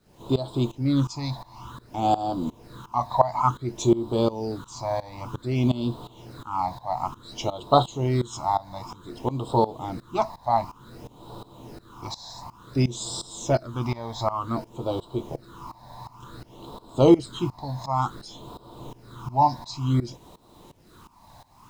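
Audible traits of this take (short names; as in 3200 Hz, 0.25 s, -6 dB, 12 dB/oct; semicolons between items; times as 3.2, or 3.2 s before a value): phasing stages 8, 0.55 Hz, lowest notch 380–2000 Hz; a quantiser's noise floor 10-bit, dither none; tremolo saw up 2.8 Hz, depth 90%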